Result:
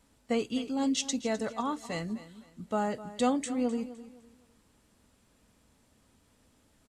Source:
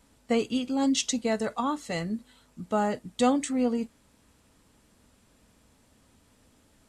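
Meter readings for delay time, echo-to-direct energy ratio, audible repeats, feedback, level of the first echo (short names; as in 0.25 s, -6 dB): 0.256 s, -15.0 dB, 2, 30%, -15.5 dB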